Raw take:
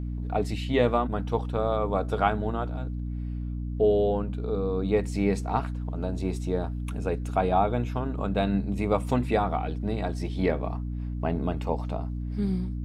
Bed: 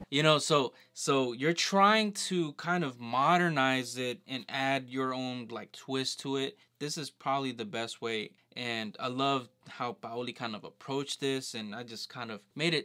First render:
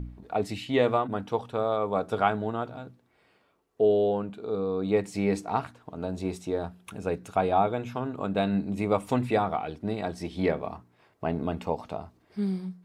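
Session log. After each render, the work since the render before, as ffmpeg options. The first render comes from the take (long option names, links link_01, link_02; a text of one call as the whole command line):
ffmpeg -i in.wav -af "bandreject=frequency=60:width_type=h:width=4,bandreject=frequency=120:width_type=h:width=4,bandreject=frequency=180:width_type=h:width=4,bandreject=frequency=240:width_type=h:width=4,bandreject=frequency=300:width_type=h:width=4" out.wav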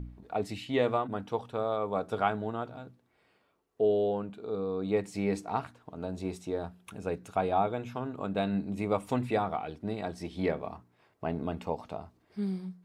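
ffmpeg -i in.wav -af "volume=-4dB" out.wav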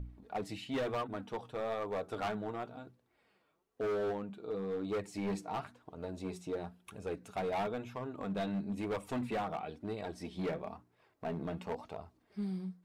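ffmpeg -i in.wav -filter_complex "[0:a]flanger=delay=1.6:depth=5.1:regen=42:speed=1:shape=triangular,acrossover=split=4700[link_01][link_02];[link_01]asoftclip=type=hard:threshold=-31.5dB[link_03];[link_03][link_02]amix=inputs=2:normalize=0" out.wav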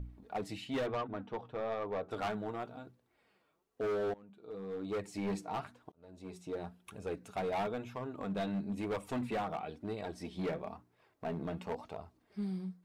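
ffmpeg -i in.wav -filter_complex "[0:a]asettb=1/sr,asplit=3[link_01][link_02][link_03];[link_01]atrim=end=0.864[link_04];[link_02]atrim=start=0.86:end=2.11,asetpts=PTS-STARTPTS,afade=type=in:duration=0.004:curve=qsin,afade=type=out:start_time=1.246:duration=0.004:curve=qsin,adynamicsmooth=sensitivity=4:basefreq=3000[link_05];[link_03]atrim=start=2.106[link_06];[link_04][link_05]acrossfade=duration=0.004:curve1=hsin:curve2=qsin[link_07];[link_07][link_06]acrossfade=duration=0.004:curve1=qsin:curve2=hsin,asplit=3[link_08][link_09][link_10];[link_08]atrim=end=4.14,asetpts=PTS-STARTPTS,afade=type=out:start_time=4.136:duration=0.004:curve=hsin:silence=0.0891251[link_11];[link_09]atrim=start=4.14:end=5.92,asetpts=PTS-STARTPTS,afade=type=in:duration=0.94:silence=0.0891251,afade=type=out:start_time=1.776:duration=0.004:curve=hsin[link_12];[link_10]atrim=start=5.92,asetpts=PTS-STARTPTS,afade=type=in:duration=0.76[link_13];[link_11][link_12][link_13]concat=n=3:v=0:a=1" out.wav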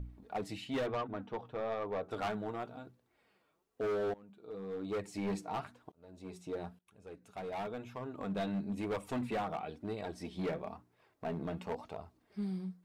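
ffmpeg -i in.wav -filter_complex "[0:a]asplit=2[link_01][link_02];[link_01]atrim=end=6.79,asetpts=PTS-STARTPTS,afade=type=out:start_time=6.786:duration=0.004:curve=hsin:silence=0.0944061[link_03];[link_02]atrim=start=6.79,asetpts=PTS-STARTPTS,afade=type=in:duration=1.5:silence=0.0944061[link_04];[link_03][link_04]concat=n=2:v=0:a=1" out.wav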